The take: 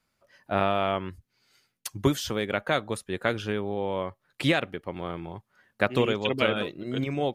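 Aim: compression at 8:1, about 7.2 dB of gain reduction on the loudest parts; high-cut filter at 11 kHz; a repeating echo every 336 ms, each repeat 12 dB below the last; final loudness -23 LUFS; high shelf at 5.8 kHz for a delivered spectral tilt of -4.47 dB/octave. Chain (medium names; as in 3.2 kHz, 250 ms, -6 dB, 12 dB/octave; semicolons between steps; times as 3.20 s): low-pass 11 kHz; treble shelf 5.8 kHz +7.5 dB; compression 8:1, threshold -25 dBFS; feedback delay 336 ms, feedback 25%, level -12 dB; trim +9 dB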